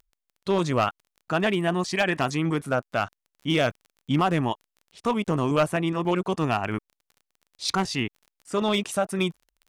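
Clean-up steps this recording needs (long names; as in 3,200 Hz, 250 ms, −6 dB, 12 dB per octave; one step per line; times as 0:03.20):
clipped peaks rebuilt −15 dBFS
click removal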